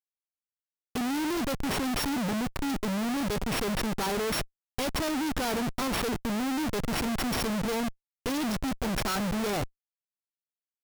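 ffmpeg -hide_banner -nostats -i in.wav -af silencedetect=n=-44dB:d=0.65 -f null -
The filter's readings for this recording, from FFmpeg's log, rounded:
silence_start: 0.00
silence_end: 0.95 | silence_duration: 0.95
silence_start: 9.66
silence_end: 10.84 | silence_duration: 1.17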